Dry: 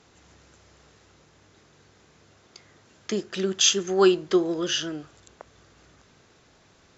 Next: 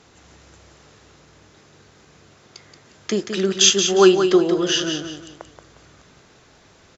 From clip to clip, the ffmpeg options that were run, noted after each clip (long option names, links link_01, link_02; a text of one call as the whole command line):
ffmpeg -i in.wav -af "aecho=1:1:178|356|534|712:0.422|0.139|0.0459|0.0152,volume=5.5dB" out.wav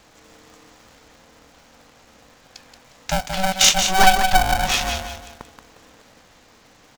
ffmpeg -i in.wav -af "aeval=exprs='val(0)*sgn(sin(2*PI*380*n/s))':channel_layout=same" out.wav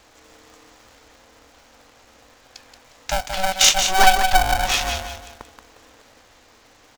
ffmpeg -i in.wav -af "equalizer=frequency=170:width_type=o:width=0.53:gain=-13.5" out.wav